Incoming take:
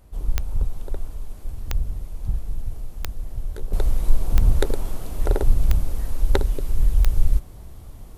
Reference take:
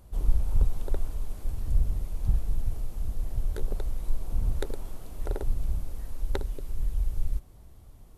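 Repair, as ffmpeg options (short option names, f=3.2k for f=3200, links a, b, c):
-af "adeclick=t=4,agate=range=-21dB:threshold=-29dB,asetnsamples=n=441:p=0,asendcmd='3.73 volume volume -10.5dB',volume=0dB"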